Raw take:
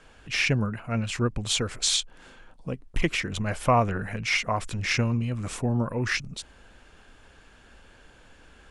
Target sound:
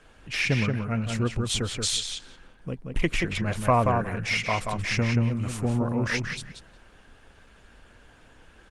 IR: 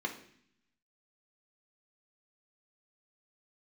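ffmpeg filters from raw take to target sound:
-filter_complex "[0:a]asettb=1/sr,asplit=3[link_01][link_02][link_03];[link_01]atrim=end=0.944[link_04];[link_02]atrim=start=0.94:end=2.73,asetpts=PTS-STARTPTS,afade=type=in:duration=0.004:curve=qsin,afade=type=out:start_time=1.786:duration=0.004:curve=qsin,equalizer=frequency=870:width_type=o:width=2.2:gain=-3[link_05];[link_03]atrim=start=2.726[link_06];[link_04][link_05]acrossfade=duration=0.004:curve1=hsin:curve2=qsin[link_07];[link_07][link_06]acrossfade=duration=0.004:curve1=qsin:curve2=hsin,asplit=2[link_08][link_09];[link_09]adelay=180,lowpass=frequency=4400:poles=1,volume=-4dB,asplit=2[link_10][link_11];[link_11]adelay=180,lowpass=frequency=4400:poles=1,volume=0.15,asplit=2[link_12][link_13];[link_13]adelay=180,lowpass=frequency=4400:poles=1,volume=0.15[link_14];[link_10][link_12][link_14]amix=inputs=3:normalize=0[link_15];[link_08][link_15]amix=inputs=2:normalize=0" -ar 48000 -c:a libopus -b:a 24k

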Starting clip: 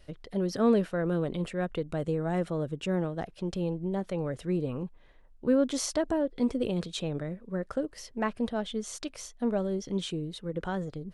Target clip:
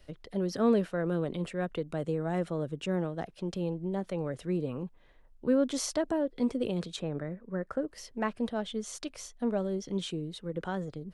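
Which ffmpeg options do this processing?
ffmpeg -i in.wav -filter_complex "[0:a]asettb=1/sr,asplit=3[link_01][link_02][link_03];[link_01]atrim=end=6.964[link_04];[link_02]atrim=start=6.96:end=7.88,asetpts=PTS-STARTPTS,afade=type=in:duration=0.004:curve=qsin,afade=type=out:start_time=0.916:duration=0.004:curve=qsin,highshelf=frequency=2400:width_type=q:width=1.5:gain=-7[link_05];[link_03]atrim=start=7.876[link_06];[link_04][link_05]acrossfade=duration=0.004:curve1=hsin:curve2=qsin[link_07];[link_07][link_06]acrossfade=duration=0.004:curve1=qsin:curve2=hsin,acrossover=split=110|1000|4500[link_08][link_09][link_10][link_11];[link_08]alimiter=level_in=23.5dB:limit=-24dB:level=0:latency=1:release=438,volume=-23.5dB[link_12];[link_12][link_09][link_10][link_11]amix=inputs=4:normalize=0,volume=-1.5dB" out.wav

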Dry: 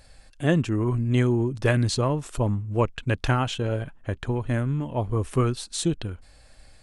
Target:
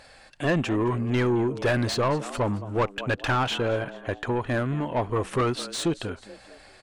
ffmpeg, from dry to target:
ffmpeg -i in.wav -filter_complex "[0:a]asplit=4[link_01][link_02][link_03][link_04];[link_02]adelay=216,afreqshift=94,volume=-21dB[link_05];[link_03]adelay=432,afreqshift=188,volume=-28.5dB[link_06];[link_04]adelay=648,afreqshift=282,volume=-36.1dB[link_07];[link_01][link_05][link_06][link_07]amix=inputs=4:normalize=0,asplit=2[link_08][link_09];[link_09]highpass=frequency=720:poles=1,volume=25dB,asoftclip=type=tanh:threshold=-6dB[link_10];[link_08][link_10]amix=inputs=2:normalize=0,lowpass=frequency=2100:poles=1,volume=-6dB,volume=-7.5dB" out.wav

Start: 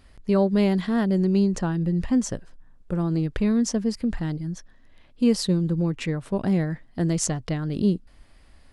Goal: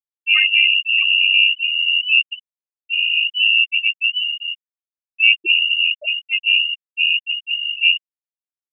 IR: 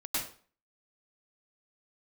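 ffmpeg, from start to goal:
-filter_complex "[0:a]asplit=4[link_01][link_02][link_03][link_04];[link_02]asetrate=29433,aresample=44100,atempo=1.49831,volume=-3dB[link_05];[link_03]asetrate=35002,aresample=44100,atempo=1.25992,volume=-15dB[link_06];[link_04]asetrate=66075,aresample=44100,atempo=0.66742,volume=-1dB[link_07];[link_01][link_05][link_06][link_07]amix=inputs=4:normalize=0,acrossover=split=410|1000[link_08][link_09][link_10];[link_10]crystalizer=i=7.5:c=0[link_11];[link_08][link_09][link_11]amix=inputs=3:normalize=0,lowpass=frequency=2600:width_type=q:width=0.5098,lowpass=frequency=2600:width_type=q:width=0.6013,lowpass=frequency=2600:width_type=q:width=0.9,lowpass=frequency=2600:width_type=q:width=2.563,afreqshift=-3000,afftfilt=real='re*gte(hypot(re,im),0.355)':imag='im*gte(hypot(re,im),0.355)':win_size=1024:overlap=0.75,volume=2.5dB"

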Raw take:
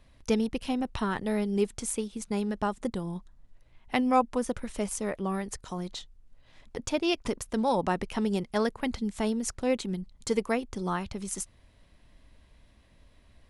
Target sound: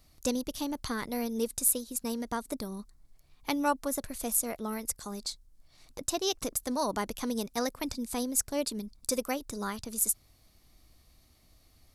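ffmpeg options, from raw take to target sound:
ffmpeg -i in.wav -af "asetrate=49833,aresample=44100,aexciter=amount=4:drive=3.5:freq=4100,volume=-4.5dB" out.wav

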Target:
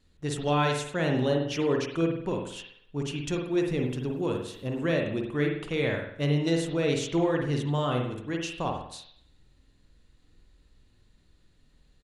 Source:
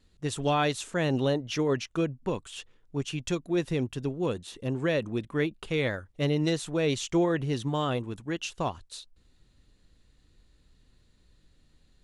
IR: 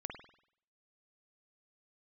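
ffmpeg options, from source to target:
-filter_complex "[1:a]atrim=start_sample=2205[link_01];[0:a][link_01]afir=irnorm=-1:irlink=0,asettb=1/sr,asplit=3[link_02][link_03][link_04];[link_02]atrim=end=3.514[link_05];[link_03]atrim=start=3.51:end=4.93,asetpts=PTS-STARTPTS,afade=type=in:duration=0.004:curve=qsin,afade=type=out:start_time=1.416:duration=0.004:curve=qsin,aeval=exprs='val(0)*gte(abs(val(0)),0.00119)':channel_layout=same[link_06];[link_04]atrim=start=4.926[link_07];[link_05][link_06]acrossfade=duration=0.004:curve1=hsin:curve2=qsin[link_08];[link_08][link_07]acrossfade=duration=0.004:curve1=qsin:curve2=hsin,aresample=32000,aresample=44100,volume=2.5dB"

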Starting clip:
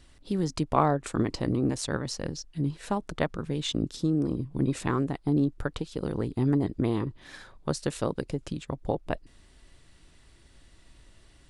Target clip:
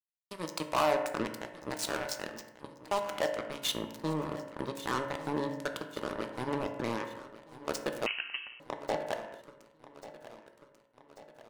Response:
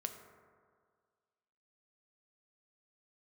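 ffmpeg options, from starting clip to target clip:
-filter_complex "[0:a]highpass=460,asplit=3[link_01][link_02][link_03];[link_01]afade=type=out:start_time=1.26:duration=0.02[link_04];[link_02]acompressor=threshold=-37dB:ratio=4,afade=type=in:start_time=1.26:duration=0.02,afade=type=out:start_time=1.66:duration=0.02[link_05];[link_03]afade=type=in:start_time=1.66:duration=0.02[link_06];[link_04][link_05][link_06]amix=inputs=3:normalize=0,asoftclip=type=tanh:threshold=-23dB,acrusher=bits=4:mix=0:aa=0.5,aecho=1:1:1140|2280|3420|4560|5700:0.158|0.0888|0.0497|0.0278|0.0156[link_07];[1:a]atrim=start_sample=2205,afade=type=out:start_time=0.44:duration=0.01,atrim=end_sample=19845,asetrate=61740,aresample=44100[link_08];[link_07][link_08]afir=irnorm=-1:irlink=0,asettb=1/sr,asplit=3[link_09][link_10][link_11];[link_09]atrim=end=8.064[link_12];[link_10]atrim=start=8.06:end=8.6,asetpts=PTS-STARTPTS,afade=type=in:duration=0.004:curve=qsin,afade=type=out:start_time=0.536:duration=0.004:curve=qsin,lowpass=frequency=2700:width_type=q:width=0.5098,lowpass=frequency=2700:width_type=q:width=0.6013,lowpass=frequency=2700:width_type=q:width=0.9,lowpass=frequency=2700:width_type=q:width=2.563,afreqshift=-3200[link_13];[link_11]atrim=start=8.596[link_14];[link_12][link_13]acrossfade=duration=0.004:curve1=hsin:curve2=qsin[link_15];[link_15][link_14]acrossfade=duration=0.004:curve1=qsin:curve2=hsin,volume=6dB"

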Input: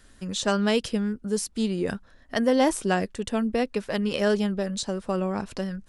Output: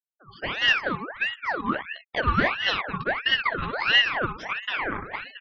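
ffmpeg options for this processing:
ffmpeg -i in.wav -filter_complex "[0:a]asplit=2[link_01][link_02];[link_02]acrusher=samples=17:mix=1:aa=0.000001:lfo=1:lforange=17:lforate=1.6,volume=-9dB[link_03];[link_01][link_03]amix=inputs=2:normalize=0,flanger=delay=15.5:depth=5.4:speed=1,acrossover=split=740|2000[link_04][link_05][link_06];[link_04]acrusher=bits=4:mode=log:mix=0:aa=0.000001[link_07];[link_07][link_05][link_06]amix=inputs=3:normalize=0,acrossover=split=480 3500:gain=0.178 1 0.0794[link_08][link_09][link_10];[link_08][link_09][link_10]amix=inputs=3:normalize=0,aecho=1:1:67.06|236.2:0.398|0.316,asetrate=48000,aresample=44100,dynaudnorm=framelen=370:gausssize=3:maxgain=10.5dB,highpass=frequency=90:poles=1,equalizer=frequency=480:width=2.7:gain=12,afftfilt=real='re*gte(hypot(re,im),0.0355)':imag='im*gte(hypot(re,im),0.0355)':win_size=1024:overlap=0.75,aeval=exprs='val(0)*sin(2*PI*1500*n/s+1500*0.6/1.5*sin(2*PI*1.5*n/s))':channel_layout=same,volume=-7dB" out.wav

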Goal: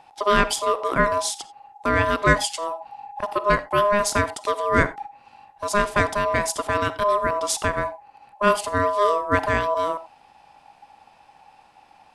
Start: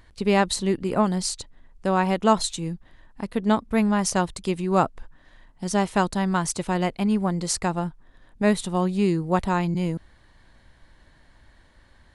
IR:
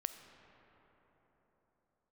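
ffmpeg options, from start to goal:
-filter_complex "[0:a]asettb=1/sr,asplit=3[link_01][link_02][link_03];[link_01]atrim=end=2.554[link_04];[link_02]atrim=start=2.55:end=3.34,asetpts=PTS-STARTPTS,afade=type=in:duration=0.004:curve=qsin,afade=type=out:start_time=0.786:duration=0.004:curve=qsin,asubboost=boost=11:cutoff=160[link_05];[link_03]atrim=start=3.336[link_06];[link_04][link_05]acrossfade=duration=0.004:curve1=hsin:curve2=qsin[link_07];[link_07][link_06]acrossfade=duration=0.004:curve1=qsin:curve2=hsin,aeval=exprs='val(0)*sin(2*PI*820*n/s)':channel_layout=same[link_08];[1:a]atrim=start_sample=2205,atrim=end_sample=4410[link_09];[link_08][link_09]afir=irnorm=-1:irlink=0,volume=6dB"

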